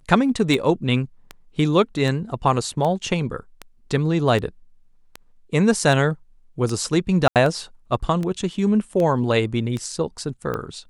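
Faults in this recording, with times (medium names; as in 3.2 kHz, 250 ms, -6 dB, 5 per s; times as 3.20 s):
tick 78 rpm
7.28–7.36 s: dropout 78 ms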